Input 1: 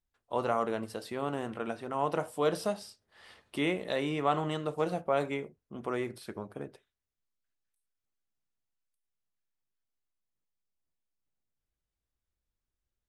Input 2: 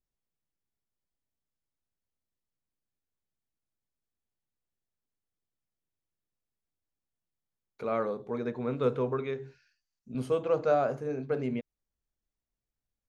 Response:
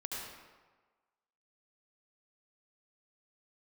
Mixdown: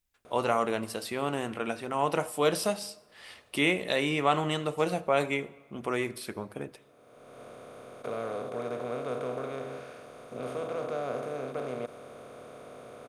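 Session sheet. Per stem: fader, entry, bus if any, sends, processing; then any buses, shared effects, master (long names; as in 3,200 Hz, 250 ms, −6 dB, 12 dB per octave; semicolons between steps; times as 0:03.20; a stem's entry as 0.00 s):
+2.0 dB, 0.00 s, send −20.5 dB, parametric band 2,400 Hz +5.5 dB 0.59 octaves
−13.0 dB, 0.25 s, no send, compressor on every frequency bin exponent 0.2; automatic ducking −19 dB, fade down 0.90 s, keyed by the first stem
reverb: on, RT60 1.4 s, pre-delay 66 ms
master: high-shelf EQ 4,400 Hz +9 dB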